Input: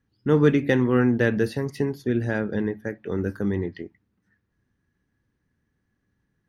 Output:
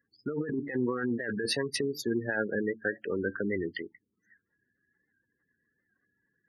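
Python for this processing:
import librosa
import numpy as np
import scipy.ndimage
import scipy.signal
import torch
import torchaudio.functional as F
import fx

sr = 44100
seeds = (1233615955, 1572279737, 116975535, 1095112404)

y = fx.spec_gate(x, sr, threshold_db=-20, keep='strong')
y = fx.highpass(y, sr, hz=1300.0, slope=6)
y = fx.high_shelf(y, sr, hz=5000.0, db=11.0)
y = fx.over_compress(y, sr, threshold_db=-35.0, ratio=-1.0)
y = fx.record_warp(y, sr, rpm=78.0, depth_cents=100.0)
y = F.gain(torch.from_numpy(y), 5.0).numpy()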